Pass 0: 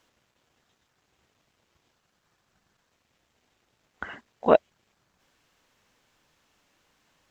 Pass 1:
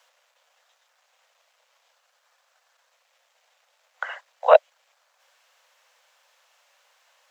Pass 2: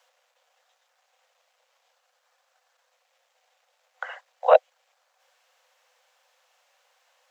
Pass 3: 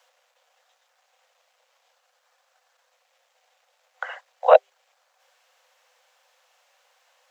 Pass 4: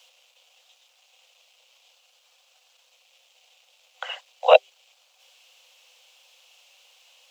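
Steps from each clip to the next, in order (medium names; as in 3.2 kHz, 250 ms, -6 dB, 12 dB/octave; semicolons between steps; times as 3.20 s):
steep high-pass 500 Hz 96 dB/octave; trim +6 dB
small resonant body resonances 510/750 Hz, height 7 dB; trim -4 dB
hum notches 50/100/150/200/250/300/350/400 Hz; trim +2.5 dB
resonant high shelf 2.2 kHz +7.5 dB, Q 3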